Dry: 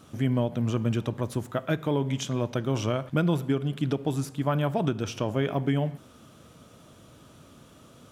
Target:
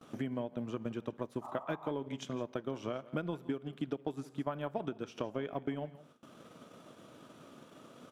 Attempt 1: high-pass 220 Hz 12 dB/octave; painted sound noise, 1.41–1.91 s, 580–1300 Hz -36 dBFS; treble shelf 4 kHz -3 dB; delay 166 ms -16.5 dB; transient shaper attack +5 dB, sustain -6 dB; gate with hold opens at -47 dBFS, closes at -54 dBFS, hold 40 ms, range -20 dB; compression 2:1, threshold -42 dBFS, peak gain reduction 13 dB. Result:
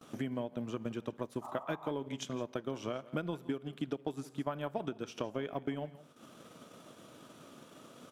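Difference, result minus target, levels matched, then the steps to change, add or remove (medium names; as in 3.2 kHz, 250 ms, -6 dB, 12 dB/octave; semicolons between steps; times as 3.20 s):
8 kHz band +5.5 dB
change: treble shelf 4 kHz -9.5 dB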